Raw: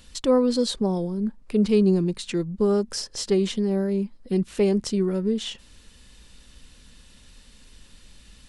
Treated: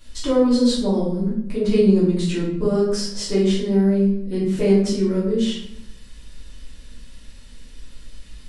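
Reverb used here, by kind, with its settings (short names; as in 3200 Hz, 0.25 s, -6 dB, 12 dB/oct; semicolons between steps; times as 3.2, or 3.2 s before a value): shoebox room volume 150 m³, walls mixed, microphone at 2.8 m; gain -6.5 dB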